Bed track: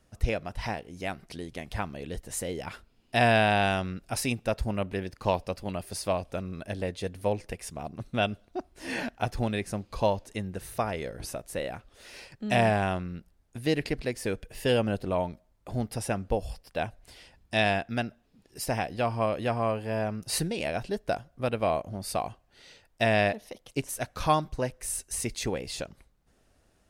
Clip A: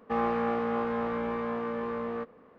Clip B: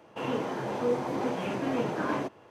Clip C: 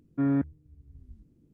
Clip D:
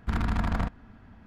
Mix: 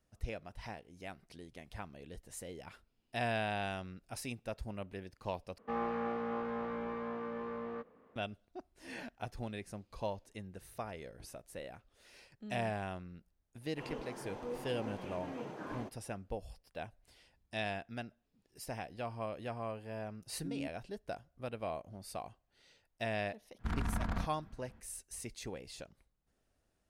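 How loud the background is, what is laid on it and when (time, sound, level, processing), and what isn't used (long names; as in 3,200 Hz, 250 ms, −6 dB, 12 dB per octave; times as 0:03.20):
bed track −13 dB
0:05.58: overwrite with A −8 dB
0:13.61: mix in B −14 dB
0:20.26: mix in C −18 dB + every bin expanded away from the loudest bin 1.5 to 1
0:23.57: mix in D −8.5 dB, fades 0.05 s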